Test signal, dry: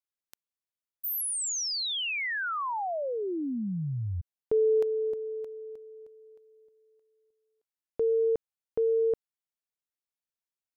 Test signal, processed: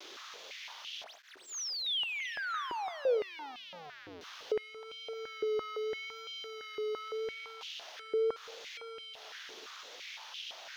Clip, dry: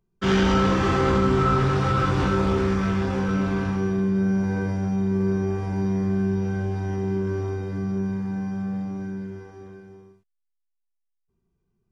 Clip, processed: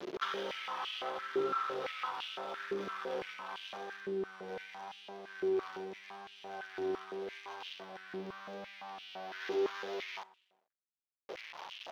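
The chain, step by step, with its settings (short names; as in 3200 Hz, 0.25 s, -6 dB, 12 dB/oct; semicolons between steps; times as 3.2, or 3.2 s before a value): zero-crossing step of -29 dBFS; bell 3400 Hz +7.5 dB 0.61 oct; spring tank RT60 1.9 s, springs 36/54 ms, chirp 55 ms, DRR 15 dB; compressor 6:1, threshold -28 dBFS; steep low-pass 6500 Hz 72 dB/oct; vibrato 0.84 Hz 43 cents; backlash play -47.5 dBFS; stepped high-pass 5.9 Hz 370–2900 Hz; gain -8.5 dB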